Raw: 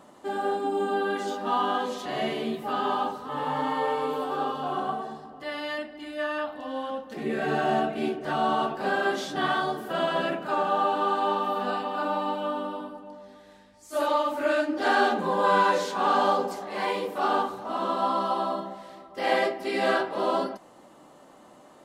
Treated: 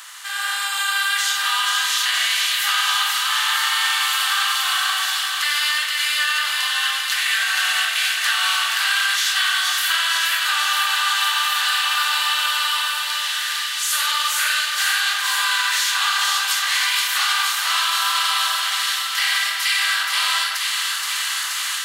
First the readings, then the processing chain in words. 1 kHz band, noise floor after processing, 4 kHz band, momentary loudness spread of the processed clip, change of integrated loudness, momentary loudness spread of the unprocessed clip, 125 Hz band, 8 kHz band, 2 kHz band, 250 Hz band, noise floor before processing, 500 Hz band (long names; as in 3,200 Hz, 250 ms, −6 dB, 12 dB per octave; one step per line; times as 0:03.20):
+1.0 dB, −25 dBFS, +21.5 dB, 3 LU, +9.0 dB, 10 LU, below −40 dB, +27.0 dB, +14.0 dB, below −40 dB, −52 dBFS, −22.5 dB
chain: compressor on every frequency bin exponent 0.6
high-pass filter 1,400 Hz 24 dB per octave
spectral tilt +4 dB per octave
automatic gain control gain up to 13 dB
brickwall limiter −7.5 dBFS, peak gain reduction 5.5 dB
downward compressor 2 to 1, threshold −24 dBFS, peak gain reduction 6 dB
delay with a high-pass on its return 476 ms, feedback 76%, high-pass 1,900 Hz, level −4 dB
level +1.5 dB